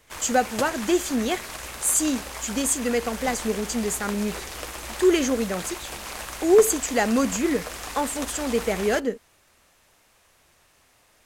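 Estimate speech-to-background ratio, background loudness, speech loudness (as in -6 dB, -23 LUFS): 10.0 dB, -34.5 LUFS, -24.5 LUFS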